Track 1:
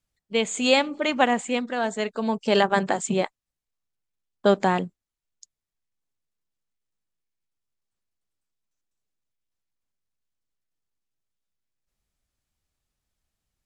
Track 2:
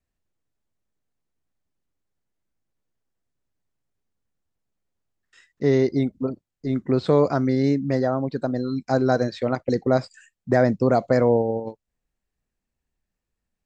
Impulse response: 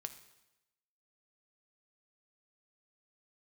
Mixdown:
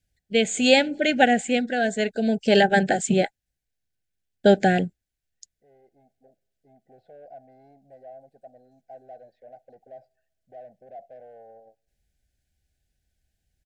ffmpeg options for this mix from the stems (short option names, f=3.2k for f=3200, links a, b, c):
-filter_complex "[0:a]equalizer=f=1.3k:t=o:w=0.32:g=13.5,volume=2dB,asplit=2[a][b];[1:a]aecho=1:1:1.5:0.37,asoftclip=type=tanh:threshold=-23dB,bandpass=f=710:t=q:w=4.1:csg=0,volume=-13.5dB,asplit=2[c][d];[d]volume=-11dB[e];[b]apad=whole_len=602046[f];[c][f]sidechaincompress=threshold=-32dB:ratio=5:attack=16:release=1350[g];[2:a]atrim=start_sample=2205[h];[e][h]afir=irnorm=-1:irlink=0[i];[a][g][i]amix=inputs=3:normalize=0,asuperstop=centerf=1100:order=20:qfactor=1.7,equalizer=f=61:w=0.56:g=8.5"